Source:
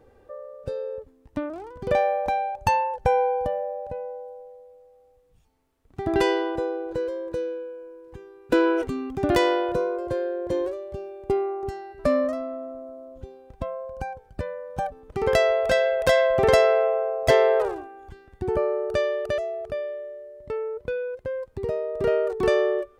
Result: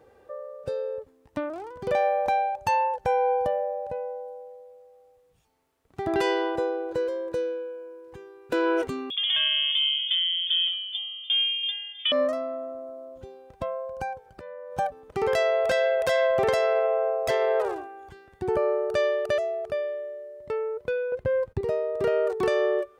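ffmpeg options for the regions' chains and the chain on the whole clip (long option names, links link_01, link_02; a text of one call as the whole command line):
ffmpeg -i in.wav -filter_complex "[0:a]asettb=1/sr,asplit=3[link_01][link_02][link_03];[link_01]atrim=end=9.104[link_04];[link_02]atrim=start=9.1:end=12.12,asetpts=PTS-STARTPTS,afade=type=in:duration=0.004:curve=qsin,afade=type=out:start_time=3.016:duration=0.004:curve=qsin,adynamicsmooth=sensitivity=0.5:basefreq=2500,lowpass=frequency=3100:width_type=q:width=0.5098,lowpass=frequency=3100:width_type=q:width=0.6013,lowpass=frequency=3100:width_type=q:width=0.9,lowpass=frequency=3100:width_type=q:width=2.563,afreqshift=-3600[link_05];[link_03]atrim=start=12.116[link_06];[link_04][link_05]acrossfade=duration=0.004:curve1=hsin:curve2=qsin[link_07];[link_07][link_06]acrossfade=duration=0.004:curve1=qsin:curve2=hsin,asettb=1/sr,asplit=3[link_08][link_09][link_10];[link_08]atrim=end=14.264[link_11];[link_09]atrim=start=14.26:end=14.72,asetpts=PTS-STARTPTS,afade=type=in:duration=0.004:curve=qsin,afade=type=out:start_time=0.456:duration=0.004:curve=qsin,equalizer=frequency=780:width=0.47:gain=4,acompressor=threshold=-37dB:ratio=12:attack=3.2:release=140:knee=1:detection=peak[link_12];[link_10]atrim=start=14.716[link_13];[link_11][link_12]acrossfade=duration=0.004:curve1=hsin:curve2=qsin[link_14];[link_14][link_13]acrossfade=duration=0.004:curve1=qsin:curve2=hsin,asettb=1/sr,asplit=3[link_15][link_16][link_17];[link_15]atrim=end=21.124[link_18];[link_16]atrim=start=21.12:end=21.61,asetpts=PTS-STARTPTS,afade=type=in:duration=0.004:curve=qsin,afade=type=out:start_time=0.486:duration=0.004:curve=qsin,acontrast=21,agate=range=-25dB:threshold=-51dB:ratio=16:release=100:detection=peak,bass=frequency=250:gain=11,treble=frequency=4000:gain=-7[link_19];[link_17]atrim=start=21.606[link_20];[link_18][link_19]acrossfade=duration=0.004:curve1=hsin:curve2=qsin[link_21];[link_21][link_20]acrossfade=duration=0.004:curve1=qsin:curve2=hsin,highpass=frequency=200:poles=1,equalizer=frequency=260:width_type=o:width=0.78:gain=-4.5,alimiter=limit=-17.5dB:level=0:latency=1:release=107,volume=2dB" out.wav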